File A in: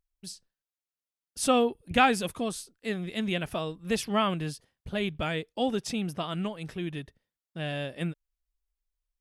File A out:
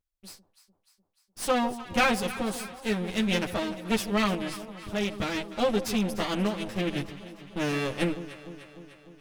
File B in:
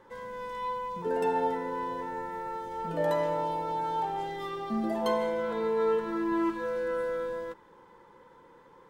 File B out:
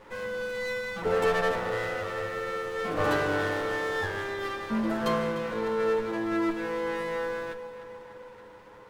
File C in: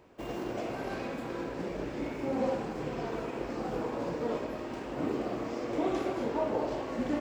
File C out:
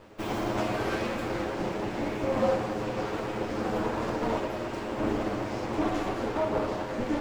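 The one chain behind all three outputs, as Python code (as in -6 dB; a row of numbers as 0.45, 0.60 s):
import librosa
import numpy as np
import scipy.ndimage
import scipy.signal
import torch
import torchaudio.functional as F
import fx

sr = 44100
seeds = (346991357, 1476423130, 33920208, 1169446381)

p1 = fx.lower_of_two(x, sr, delay_ms=9.5)
p2 = fx.rider(p1, sr, range_db=5, speed_s=2.0)
p3 = p2 + fx.echo_alternate(p2, sr, ms=150, hz=930.0, feedback_pct=78, wet_db=-12.0, dry=0)
y = p3 * 10.0 ** (-30 / 20.0) / np.sqrt(np.mean(np.square(p3)))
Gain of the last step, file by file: +2.5, +3.0, +5.0 dB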